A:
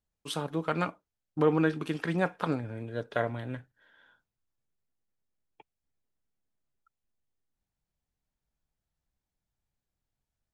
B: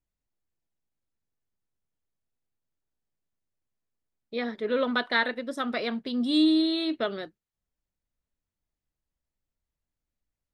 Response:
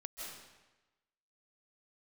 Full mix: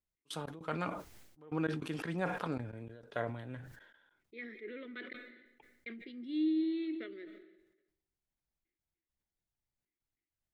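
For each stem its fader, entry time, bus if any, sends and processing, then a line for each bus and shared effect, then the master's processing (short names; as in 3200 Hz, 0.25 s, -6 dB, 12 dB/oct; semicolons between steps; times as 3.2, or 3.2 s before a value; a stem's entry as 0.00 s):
-8.0 dB, 0.00 s, no send, step gate "x.x.xxxx" 99 bpm -24 dB
-5.5 dB, 0.00 s, muted 5.13–5.86, send -13 dB, double band-pass 850 Hz, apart 2.6 oct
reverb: on, RT60 1.1 s, pre-delay 0.12 s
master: sustainer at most 57 dB/s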